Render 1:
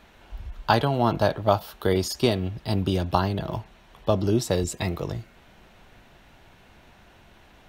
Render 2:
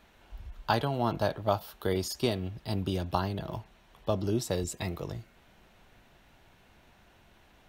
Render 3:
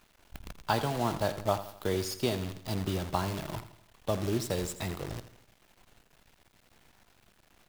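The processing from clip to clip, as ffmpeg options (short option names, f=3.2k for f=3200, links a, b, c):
-af "highshelf=f=8.2k:g=4.5,volume=-7dB"
-af "acrusher=bits=7:dc=4:mix=0:aa=0.000001,aecho=1:1:83|166|249|332:0.224|0.101|0.0453|0.0204,volume=-1.5dB"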